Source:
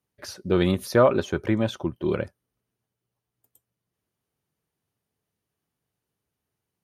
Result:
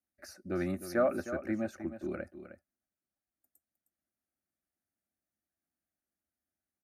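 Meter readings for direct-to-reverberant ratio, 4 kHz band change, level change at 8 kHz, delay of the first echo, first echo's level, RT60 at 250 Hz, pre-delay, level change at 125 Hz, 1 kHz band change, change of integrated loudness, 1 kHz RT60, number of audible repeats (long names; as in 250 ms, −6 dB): no reverb audible, −19.0 dB, −10.0 dB, 310 ms, −11.5 dB, no reverb audible, no reverb audible, −15.5 dB, −11.5 dB, −11.0 dB, no reverb audible, 1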